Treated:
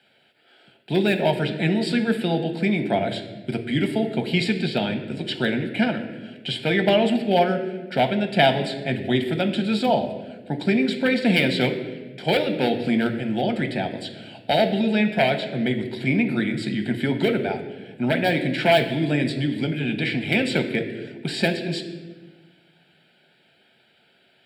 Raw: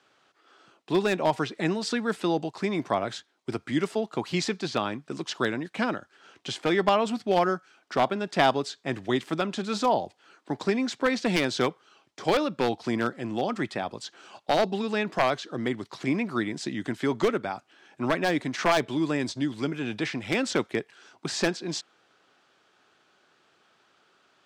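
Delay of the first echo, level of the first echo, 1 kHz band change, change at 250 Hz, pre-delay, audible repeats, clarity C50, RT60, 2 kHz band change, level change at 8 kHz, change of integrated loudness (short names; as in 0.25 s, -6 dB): none, none, +1.5 dB, +6.5 dB, 5 ms, none, 9.5 dB, 1.3 s, +5.5 dB, n/a, +5.0 dB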